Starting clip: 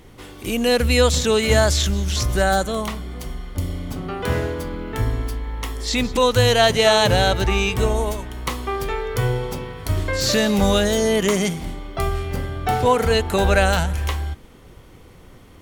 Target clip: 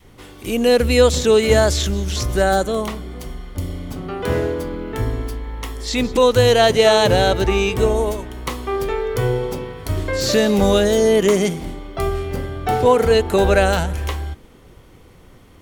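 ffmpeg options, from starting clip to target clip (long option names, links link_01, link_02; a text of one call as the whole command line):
ffmpeg -i in.wav -af "adynamicequalizer=threshold=0.0251:dfrequency=390:dqfactor=0.97:tfrequency=390:tqfactor=0.97:attack=5:release=100:ratio=0.375:range=3.5:mode=boostabove:tftype=bell,volume=-1dB" out.wav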